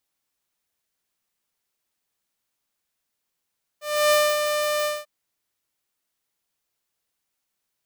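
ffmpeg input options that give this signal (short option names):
-f lavfi -i "aevalsrc='0.237*(2*mod(598*t,1)-1)':d=1.243:s=44100,afade=t=in:d=0.302,afade=t=out:st=0.302:d=0.253:silence=0.473,afade=t=out:st=1.04:d=0.203"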